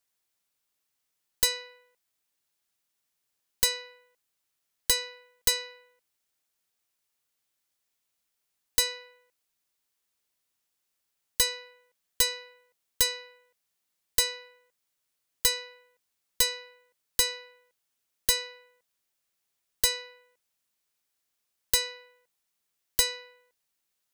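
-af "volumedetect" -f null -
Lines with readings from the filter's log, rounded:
mean_volume: -35.3 dB
max_volume: -6.2 dB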